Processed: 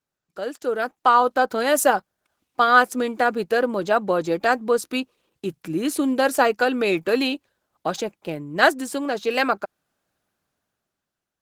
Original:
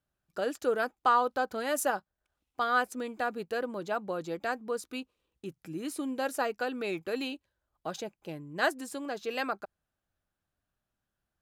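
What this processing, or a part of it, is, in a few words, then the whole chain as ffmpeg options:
video call: -af "highpass=140,dynaudnorm=f=230:g=9:m=12dB,volume=1.5dB" -ar 48000 -c:a libopus -b:a 16k

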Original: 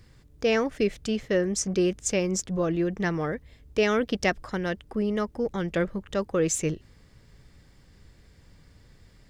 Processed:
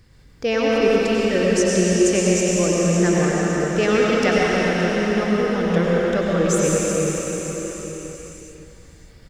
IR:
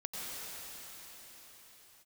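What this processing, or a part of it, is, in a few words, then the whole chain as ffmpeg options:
cathedral: -filter_complex "[1:a]atrim=start_sample=2205[a];[0:a][a]afir=irnorm=-1:irlink=0,aecho=1:1:573:0.211,volume=5.5dB"

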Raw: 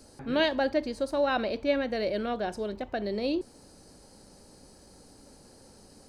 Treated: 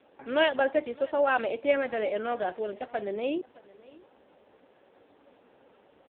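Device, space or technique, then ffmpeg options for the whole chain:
satellite phone: -af "highpass=390,lowpass=3.1k,equalizer=f=4.5k:t=o:w=2:g=6,aecho=1:1:620:0.075,volume=3dB" -ar 8000 -c:a libopencore_amrnb -b:a 5150

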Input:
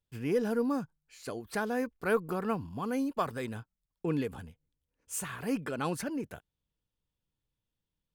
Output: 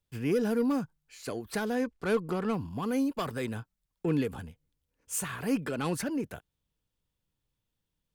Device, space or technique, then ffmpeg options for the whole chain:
one-band saturation: -filter_complex "[0:a]asettb=1/sr,asplit=3[a][b][c];[a]atrim=end=1.754[d];[b]atrim=start=1.75:end=2.54,asetpts=PTS-STARTPTS,afade=t=in:d=0.004:c=qsin,afade=t=out:st=0.786:d=0.004:c=qsin,lowpass=8.7k[e];[c]atrim=start=2.536[f];[d][e]acrossfade=d=0.004:c1=hsin:c2=qsin[g];[g][f]acrossfade=d=0.004:c1=qsin:c2=hsin,acrossover=split=440|2200[h][i][j];[i]asoftclip=type=tanh:threshold=-36dB[k];[h][k][j]amix=inputs=3:normalize=0,volume=3.5dB"

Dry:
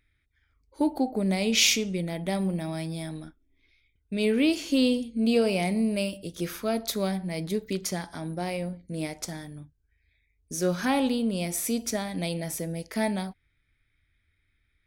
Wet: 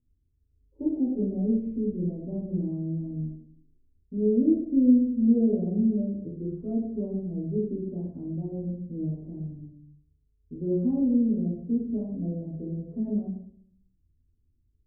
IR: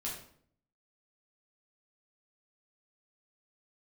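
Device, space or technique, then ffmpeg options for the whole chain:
next room: -filter_complex "[0:a]lowpass=f=410:w=0.5412,lowpass=f=410:w=1.3066[a];[1:a]atrim=start_sample=2205[b];[a][b]afir=irnorm=-1:irlink=0"

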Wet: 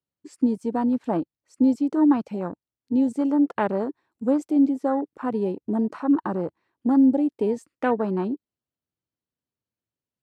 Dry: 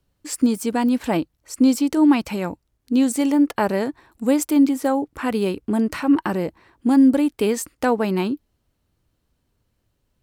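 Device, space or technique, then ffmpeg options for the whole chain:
over-cleaned archive recording: -af "highpass=130,lowpass=7.9k,afwtdn=0.0447,volume=-3dB"

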